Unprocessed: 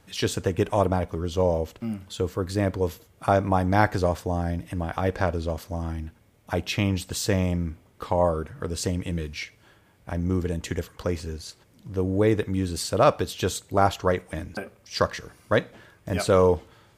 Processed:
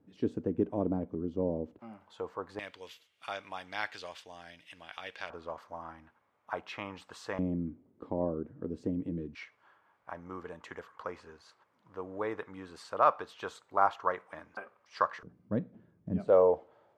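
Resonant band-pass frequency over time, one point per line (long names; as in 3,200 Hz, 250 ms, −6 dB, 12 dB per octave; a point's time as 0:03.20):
resonant band-pass, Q 2.3
270 Hz
from 0:01.79 910 Hz
from 0:02.59 3,000 Hz
from 0:05.30 1,100 Hz
from 0:07.39 280 Hz
from 0:09.35 1,100 Hz
from 0:15.23 200 Hz
from 0:16.28 640 Hz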